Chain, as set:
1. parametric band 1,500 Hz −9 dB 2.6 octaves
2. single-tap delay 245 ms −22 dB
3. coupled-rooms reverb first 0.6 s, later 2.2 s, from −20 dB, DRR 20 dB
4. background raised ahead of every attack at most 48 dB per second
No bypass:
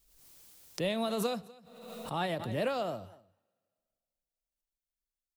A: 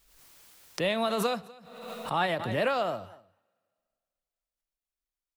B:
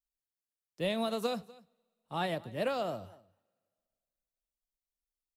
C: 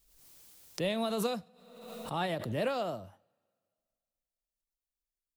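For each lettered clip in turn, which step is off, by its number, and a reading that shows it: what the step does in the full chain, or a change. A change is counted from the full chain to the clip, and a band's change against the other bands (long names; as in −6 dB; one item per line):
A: 1, 2 kHz band +5.0 dB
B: 4, change in momentary loudness spread −13 LU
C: 2, change in momentary loudness spread −4 LU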